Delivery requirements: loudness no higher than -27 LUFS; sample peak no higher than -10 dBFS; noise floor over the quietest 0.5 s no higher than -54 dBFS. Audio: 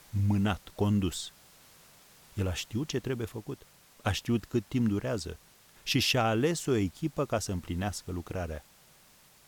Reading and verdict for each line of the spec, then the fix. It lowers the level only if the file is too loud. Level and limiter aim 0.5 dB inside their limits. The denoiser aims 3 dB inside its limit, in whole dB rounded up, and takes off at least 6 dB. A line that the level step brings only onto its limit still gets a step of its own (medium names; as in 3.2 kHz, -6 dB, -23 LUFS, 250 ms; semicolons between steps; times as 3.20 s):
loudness -31.0 LUFS: pass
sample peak -14.0 dBFS: pass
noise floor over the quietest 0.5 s -60 dBFS: pass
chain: none needed